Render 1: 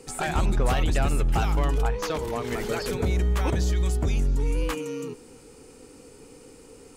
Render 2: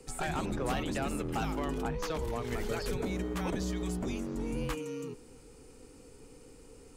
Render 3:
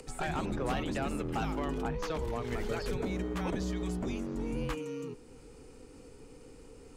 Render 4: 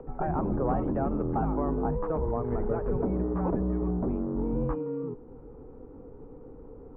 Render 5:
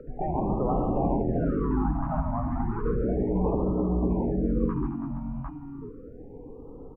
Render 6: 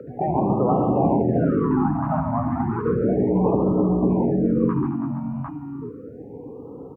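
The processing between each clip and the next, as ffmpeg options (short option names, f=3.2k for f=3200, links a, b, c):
-filter_complex "[0:a]lowshelf=f=84:g=10,acrossover=split=180|570|3600[a][b][c][d];[a]aeval=exprs='0.0631*(abs(mod(val(0)/0.0631+3,4)-2)-1)':c=same[e];[e][b][c][d]amix=inputs=4:normalize=0,volume=-7dB"
-af "highshelf=f=7.3k:g=-9,acompressor=mode=upward:threshold=-46dB:ratio=2.5"
-af "lowpass=f=1.1k:w=0.5412,lowpass=f=1.1k:w=1.3066,volume=6dB"
-filter_complex "[0:a]asplit=2[a][b];[b]aecho=0:1:70|136|216|328|461|752:0.266|0.562|0.266|0.299|0.188|0.668[c];[a][c]amix=inputs=2:normalize=0,afftfilt=real='re*(1-between(b*sr/1024,400*pow(1900/400,0.5+0.5*sin(2*PI*0.33*pts/sr))/1.41,400*pow(1900/400,0.5+0.5*sin(2*PI*0.33*pts/sr))*1.41))':imag='im*(1-between(b*sr/1024,400*pow(1900/400,0.5+0.5*sin(2*PI*0.33*pts/sr))/1.41,400*pow(1900/400,0.5+0.5*sin(2*PI*0.33*pts/sr))*1.41))':win_size=1024:overlap=0.75"
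-af "highpass=f=94:w=0.5412,highpass=f=94:w=1.3066,volume=7dB"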